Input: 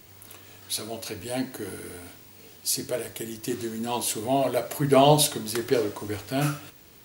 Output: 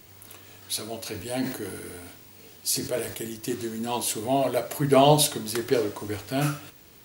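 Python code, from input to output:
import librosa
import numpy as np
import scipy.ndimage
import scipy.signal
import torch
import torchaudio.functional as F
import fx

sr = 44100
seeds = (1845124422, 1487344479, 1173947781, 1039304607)

y = fx.sustainer(x, sr, db_per_s=73.0, at=(1.0, 3.33))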